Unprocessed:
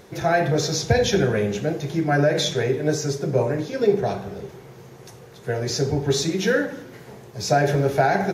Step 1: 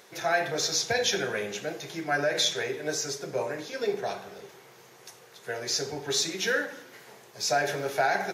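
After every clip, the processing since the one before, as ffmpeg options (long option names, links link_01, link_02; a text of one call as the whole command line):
ffmpeg -i in.wav -af "highpass=frequency=1300:poles=1" out.wav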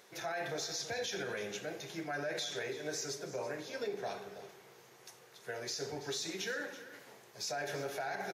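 ffmpeg -i in.wav -af "alimiter=limit=-23dB:level=0:latency=1:release=71,aecho=1:1:331:0.178,volume=-6.5dB" out.wav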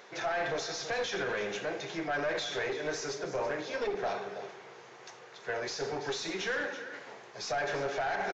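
ffmpeg -i in.wav -filter_complex "[0:a]aeval=exprs='clip(val(0),-1,0.0106)':channel_layout=same,asplit=2[link_01][link_02];[link_02]highpass=frequency=720:poles=1,volume=9dB,asoftclip=type=tanh:threshold=-28dB[link_03];[link_01][link_03]amix=inputs=2:normalize=0,lowpass=frequency=1700:poles=1,volume=-6dB,aresample=16000,aresample=44100,volume=7.5dB" out.wav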